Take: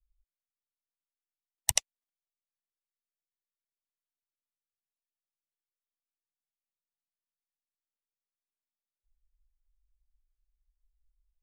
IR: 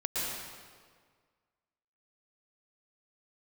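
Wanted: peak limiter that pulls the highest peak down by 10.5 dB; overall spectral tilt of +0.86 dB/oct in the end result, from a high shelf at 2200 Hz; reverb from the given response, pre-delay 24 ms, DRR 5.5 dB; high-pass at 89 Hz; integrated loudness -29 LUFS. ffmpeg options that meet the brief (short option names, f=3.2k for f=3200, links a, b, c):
-filter_complex "[0:a]highpass=89,highshelf=f=2.2k:g=6.5,alimiter=limit=-6dB:level=0:latency=1,asplit=2[a][b];[1:a]atrim=start_sample=2205,adelay=24[c];[b][c]afir=irnorm=-1:irlink=0,volume=-12dB[d];[a][d]amix=inputs=2:normalize=0,volume=3.5dB"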